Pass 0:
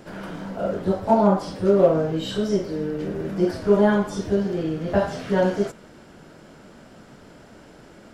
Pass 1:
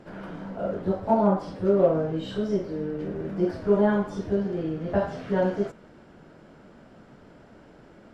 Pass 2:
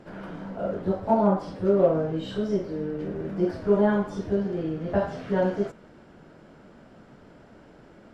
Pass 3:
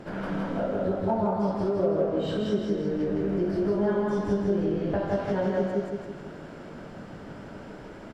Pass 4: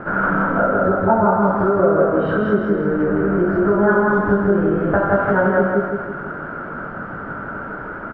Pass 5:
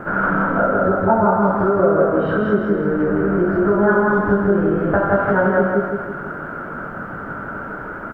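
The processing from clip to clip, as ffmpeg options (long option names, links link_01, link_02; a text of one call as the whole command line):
ffmpeg -i in.wav -af "lowpass=frequency=2100:poles=1,volume=-3.5dB" out.wav
ffmpeg -i in.wav -af anull out.wav
ffmpeg -i in.wav -filter_complex "[0:a]asplit=2[link_01][link_02];[link_02]aecho=0:1:181:0.596[link_03];[link_01][link_03]amix=inputs=2:normalize=0,acompressor=threshold=-34dB:ratio=3,asplit=2[link_04][link_05];[link_05]aecho=0:1:161|322|483|644|805|966:0.596|0.274|0.126|0.058|0.0267|0.0123[link_06];[link_04][link_06]amix=inputs=2:normalize=0,volume=6dB" out.wav
ffmpeg -i in.wav -af "lowpass=frequency=1400:width_type=q:width=7.1,volume=8.5dB" out.wav
ffmpeg -i in.wav -af "acrusher=bits=10:mix=0:aa=0.000001" out.wav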